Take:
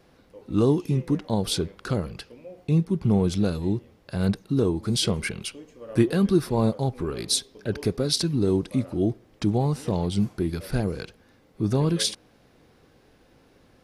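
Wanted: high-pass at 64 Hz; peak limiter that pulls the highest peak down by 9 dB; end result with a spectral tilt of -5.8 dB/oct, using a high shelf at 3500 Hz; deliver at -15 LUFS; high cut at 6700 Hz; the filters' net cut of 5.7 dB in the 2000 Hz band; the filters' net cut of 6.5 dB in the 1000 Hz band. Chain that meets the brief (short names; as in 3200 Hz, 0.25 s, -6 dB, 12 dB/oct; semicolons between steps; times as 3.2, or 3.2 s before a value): HPF 64 Hz; LPF 6700 Hz; bell 1000 Hz -8 dB; bell 2000 Hz -7 dB; high shelf 3500 Hz +6.5 dB; gain +12 dB; limiter -3.5 dBFS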